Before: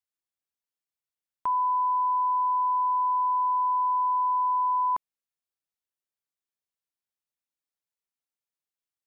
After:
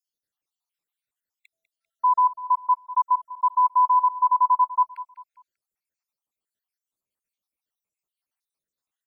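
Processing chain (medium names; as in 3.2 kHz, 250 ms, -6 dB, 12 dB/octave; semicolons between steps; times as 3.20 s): random holes in the spectrogram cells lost 68%; on a send: feedback delay 197 ms, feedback 41%, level -17 dB; on the sum: trim +7.5 dB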